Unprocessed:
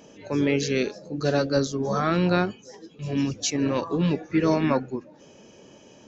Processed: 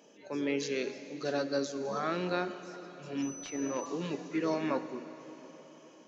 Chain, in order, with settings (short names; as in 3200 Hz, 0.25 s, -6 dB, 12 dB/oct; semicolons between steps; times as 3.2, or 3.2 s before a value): HPF 260 Hz 12 dB/oct; plate-style reverb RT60 4.5 s, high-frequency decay 0.95×, DRR 10 dB; 3.22–3.86 pulse-width modulation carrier 6000 Hz; gain -8.5 dB